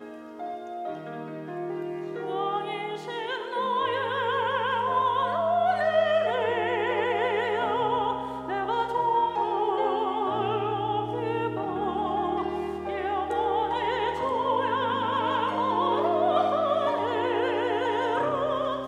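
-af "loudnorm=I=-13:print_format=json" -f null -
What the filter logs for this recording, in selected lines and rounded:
"input_i" : "-26.6",
"input_tp" : "-10.9",
"input_lra" : "3.5",
"input_thresh" : "-36.7",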